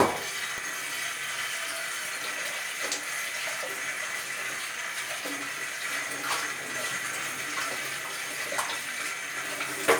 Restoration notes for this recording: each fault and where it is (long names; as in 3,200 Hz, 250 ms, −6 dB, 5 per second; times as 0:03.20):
0:00.58: click